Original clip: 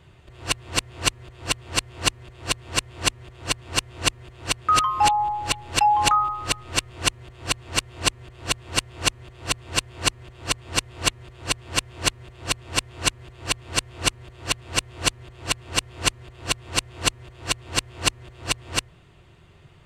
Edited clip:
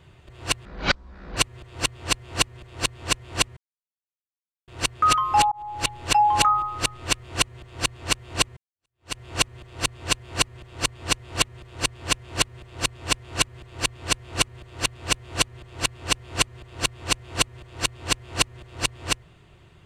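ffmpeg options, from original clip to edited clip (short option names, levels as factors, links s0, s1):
-filter_complex "[0:a]asplit=7[s0][s1][s2][s3][s4][s5][s6];[s0]atrim=end=0.654[s7];[s1]atrim=start=0.65:end=1.03,asetpts=PTS-STARTPTS,asetrate=23373,aresample=44100[s8];[s2]atrim=start=1.026:end=3.23,asetpts=PTS-STARTPTS,afade=t=out:st=2.2:d=0.004:c=hsin[s9];[s3]atrim=start=3.23:end=4.34,asetpts=PTS-STARTPTS,volume=0[s10];[s4]atrim=start=4.34:end=5.18,asetpts=PTS-STARTPTS,afade=t=in:d=0.004:c=hsin,afade=t=out:st=0.836:d=0.004:c=hsin[s11];[s5]atrim=start=5.18:end=8.23,asetpts=PTS-STARTPTS,afade=t=in:d=0.36,afade=t=out:st=3.046:d=0.004:c=hsin[s12];[s6]atrim=start=8.23,asetpts=PTS-STARTPTS,afade=t=in:d=0.61:c=exp[s13];[s7][s8]acrossfade=d=0.004:c1=hsin:c2=hsin[s14];[s9][s10][s11][s12][s13]concat=n=5:v=0:a=1[s15];[s14][s15]acrossfade=d=0.004:c1=hsin:c2=hsin"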